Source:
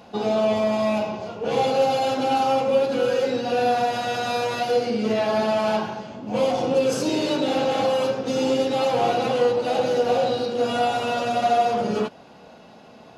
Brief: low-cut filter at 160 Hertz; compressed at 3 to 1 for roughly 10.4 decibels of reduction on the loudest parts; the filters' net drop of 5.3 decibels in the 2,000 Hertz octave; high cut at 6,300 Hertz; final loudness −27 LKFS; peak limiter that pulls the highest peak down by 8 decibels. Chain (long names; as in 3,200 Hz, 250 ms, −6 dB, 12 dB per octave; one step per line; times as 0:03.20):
high-pass filter 160 Hz
low-pass filter 6,300 Hz
parametric band 2,000 Hz −8 dB
downward compressor 3 to 1, threshold −31 dBFS
level +8.5 dB
brickwall limiter −19.5 dBFS